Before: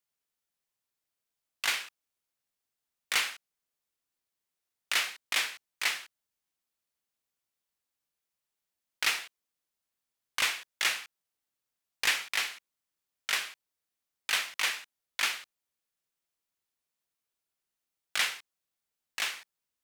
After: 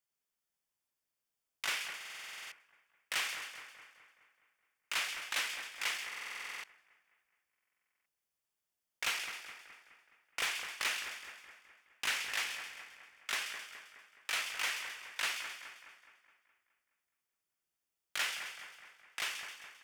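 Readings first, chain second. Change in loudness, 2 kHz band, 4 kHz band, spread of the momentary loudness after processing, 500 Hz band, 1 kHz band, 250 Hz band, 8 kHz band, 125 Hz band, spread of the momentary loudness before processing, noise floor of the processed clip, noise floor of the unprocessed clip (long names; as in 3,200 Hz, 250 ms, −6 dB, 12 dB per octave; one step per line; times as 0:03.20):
−6.5 dB, −5.0 dB, −5.5 dB, 17 LU, −3.5 dB, −4.0 dB, −4.5 dB, −5.5 dB, can't be measured, 13 LU, below −85 dBFS, below −85 dBFS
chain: notch filter 4,000 Hz, Q 6.7
in parallel at −1 dB: brickwall limiter −25 dBFS, peak gain reduction 11 dB
on the sum: hard clipping −19 dBFS, distortion −17 dB
echo with a time of its own for lows and highs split 2,300 Hz, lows 210 ms, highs 132 ms, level −7.5 dB
buffer that repeats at 0:01.96/0:06.08/0:07.50, samples 2,048, times 11
highs frequency-modulated by the lows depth 0.84 ms
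level −8 dB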